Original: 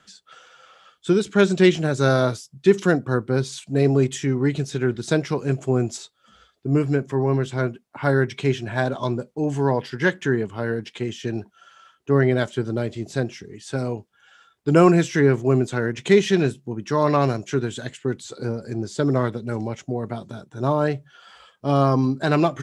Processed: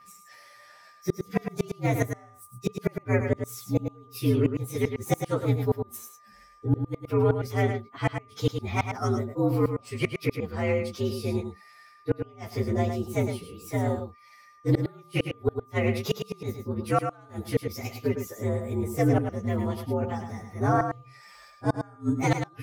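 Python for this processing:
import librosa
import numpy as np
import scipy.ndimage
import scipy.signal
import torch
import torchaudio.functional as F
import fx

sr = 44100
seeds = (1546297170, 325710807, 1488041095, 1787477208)

p1 = fx.partial_stretch(x, sr, pct=118)
p2 = fx.gate_flip(p1, sr, shuts_db=-12.0, range_db=-33)
p3 = p2 + 10.0 ** (-51.0 / 20.0) * np.sin(2.0 * np.pi * 1200.0 * np.arange(len(p2)) / sr)
y = p3 + fx.echo_single(p3, sr, ms=107, db=-7.0, dry=0)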